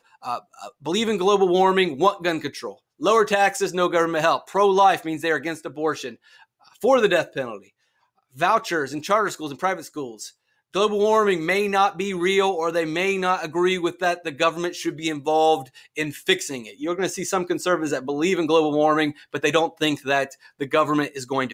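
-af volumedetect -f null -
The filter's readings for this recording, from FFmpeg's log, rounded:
mean_volume: -22.4 dB
max_volume: -5.2 dB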